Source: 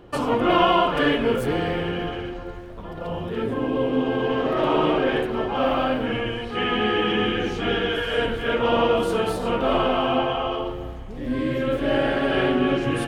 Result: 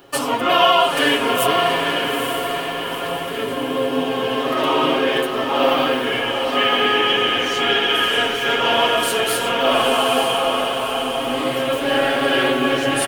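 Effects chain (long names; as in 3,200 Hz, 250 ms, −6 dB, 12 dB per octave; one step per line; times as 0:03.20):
RIAA equalisation recording
comb filter 7.3 ms
on a send: feedback delay with all-pass diffusion 896 ms, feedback 51%, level −4.5 dB
on the sum: level +2.5 dB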